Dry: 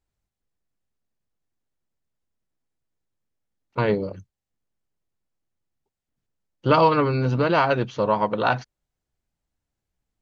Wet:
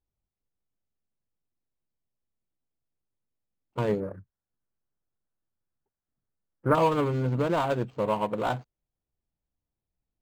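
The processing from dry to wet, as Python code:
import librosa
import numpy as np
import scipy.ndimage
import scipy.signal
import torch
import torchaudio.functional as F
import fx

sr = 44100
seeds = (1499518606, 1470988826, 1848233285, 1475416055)

y = scipy.ndimage.median_filter(x, 25, mode='constant')
y = fx.high_shelf_res(y, sr, hz=2300.0, db=-12.5, q=3.0, at=(4.0, 6.75))
y = np.interp(np.arange(len(y)), np.arange(len(y))[::4], y[::4])
y = F.gain(torch.from_numpy(y), -4.5).numpy()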